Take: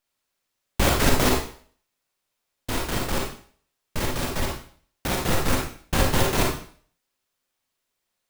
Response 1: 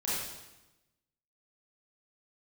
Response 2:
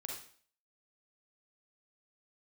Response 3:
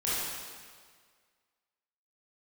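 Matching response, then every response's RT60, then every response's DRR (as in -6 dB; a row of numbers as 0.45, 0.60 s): 2; 1.0, 0.50, 1.8 s; -9.5, -1.0, -10.0 dB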